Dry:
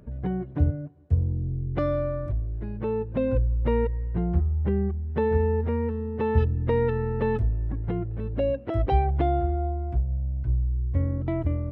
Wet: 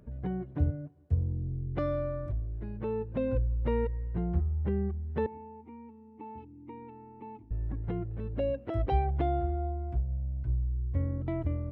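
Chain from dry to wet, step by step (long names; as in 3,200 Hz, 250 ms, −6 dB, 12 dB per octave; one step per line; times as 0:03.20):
0:05.26–0:07.51: formant filter u
level −5.5 dB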